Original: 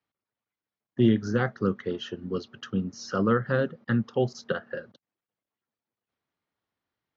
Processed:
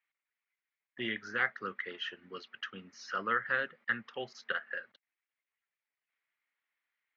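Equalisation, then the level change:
resonant band-pass 2,100 Hz, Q 3.3
+8.5 dB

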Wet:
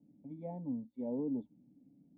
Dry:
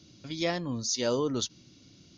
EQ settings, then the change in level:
formant resonators in series u
high-pass filter 51 Hz
phaser with its sweep stopped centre 340 Hz, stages 6
+5.0 dB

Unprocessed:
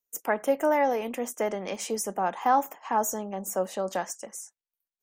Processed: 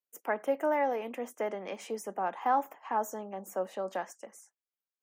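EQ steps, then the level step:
three-way crossover with the lows and the highs turned down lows −21 dB, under 180 Hz, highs −18 dB, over 3,100 Hz
high-shelf EQ 5,800 Hz +11 dB
−5.0 dB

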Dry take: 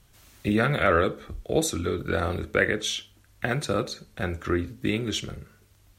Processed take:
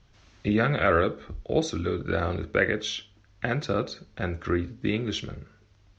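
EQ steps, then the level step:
low-pass with resonance 6,100 Hz, resonance Q 2.7
high-frequency loss of the air 220 metres
0.0 dB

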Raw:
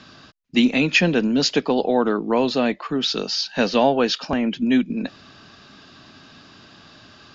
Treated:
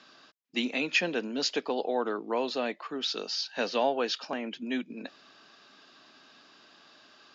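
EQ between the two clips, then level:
high-pass filter 350 Hz 12 dB per octave
−8.5 dB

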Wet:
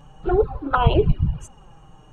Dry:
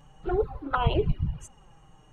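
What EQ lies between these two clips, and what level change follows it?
parametric band 2,000 Hz −7.5 dB 0.23 octaves
high-shelf EQ 3,800 Hz −6 dB
+7.5 dB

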